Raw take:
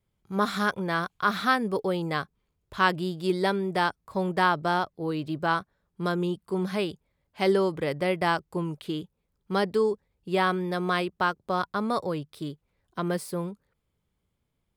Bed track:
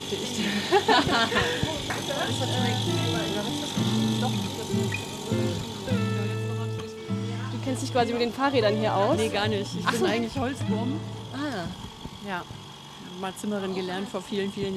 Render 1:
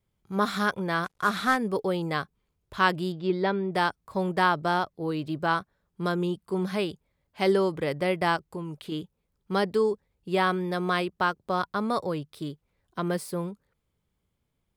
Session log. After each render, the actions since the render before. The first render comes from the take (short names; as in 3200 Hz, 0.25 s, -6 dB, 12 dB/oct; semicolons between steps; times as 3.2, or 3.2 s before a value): 1.04–1.57 CVSD 64 kbps; 3.12–3.75 air absorption 210 m; 8.36–8.92 compressor 2.5:1, threshold -33 dBFS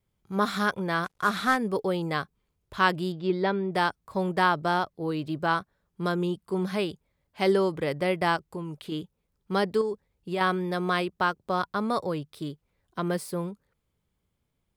9.81–10.41 compressor 2.5:1, threshold -27 dBFS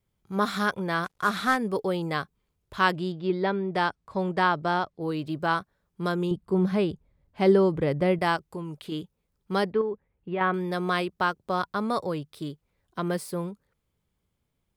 2.93–5.01 air absorption 60 m; 6.31–8.19 tilt -2.5 dB/oct; 9.71–10.54 LPF 2600 Hz 24 dB/oct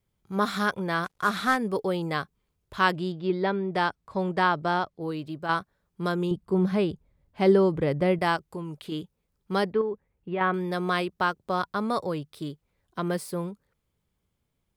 4.83–5.49 fade out linear, to -6.5 dB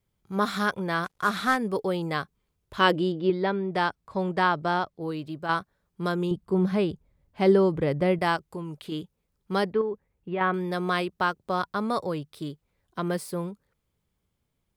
2.79–3.3 small resonant body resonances 310/490/3000 Hz, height 11 dB, ringing for 35 ms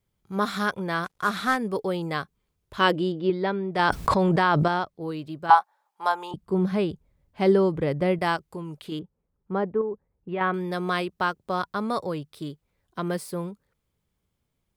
3.79–4.68 fast leveller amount 100%; 5.5–6.34 resonant high-pass 840 Hz, resonance Q 9.3; 8.99–10.29 LPF 1200 Hz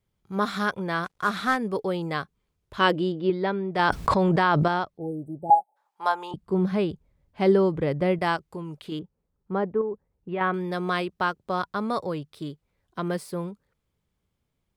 high shelf 8300 Hz -6.5 dB; 4.98–5.76 spectral delete 880–7900 Hz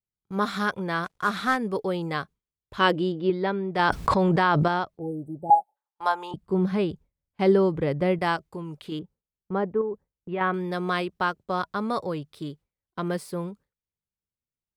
notch 640 Hz, Q 20; gate with hold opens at -38 dBFS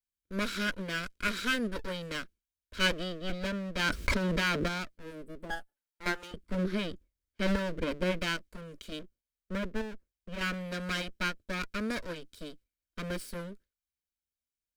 minimum comb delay 1.3 ms; fixed phaser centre 330 Hz, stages 4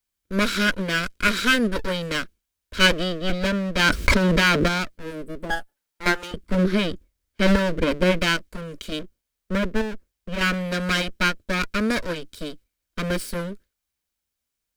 gain +11 dB; limiter -3 dBFS, peak gain reduction 1 dB